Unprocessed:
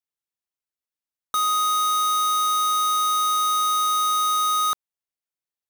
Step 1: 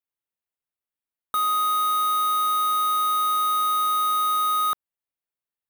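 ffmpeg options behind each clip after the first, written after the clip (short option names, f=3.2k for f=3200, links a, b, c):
-af "equalizer=f=5.8k:w=1.5:g=-14"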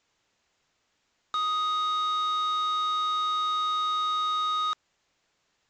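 -af "acontrast=73,aeval=exprs='0.2*sin(PI/2*8.91*val(0)/0.2)':c=same,aresample=16000,aresample=44100,volume=-6.5dB"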